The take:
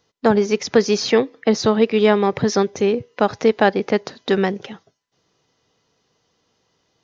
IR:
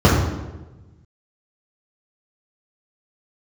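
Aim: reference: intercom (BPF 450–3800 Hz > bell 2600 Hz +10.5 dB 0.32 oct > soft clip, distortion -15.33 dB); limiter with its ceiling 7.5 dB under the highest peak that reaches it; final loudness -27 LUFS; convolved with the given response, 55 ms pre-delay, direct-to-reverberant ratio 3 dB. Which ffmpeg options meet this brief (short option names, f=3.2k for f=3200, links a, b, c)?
-filter_complex "[0:a]alimiter=limit=-9.5dB:level=0:latency=1,asplit=2[a][b];[1:a]atrim=start_sample=2205,adelay=55[c];[b][c]afir=irnorm=-1:irlink=0,volume=-28.5dB[d];[a][d]amix=inputs=2:normalize=0,highpass=450,lowpass=3.8k,equalizer=f=2.6k:t=o:w=0.32:g=10.5,asoftclip=threshold=-15.5dB,volume=-4dB"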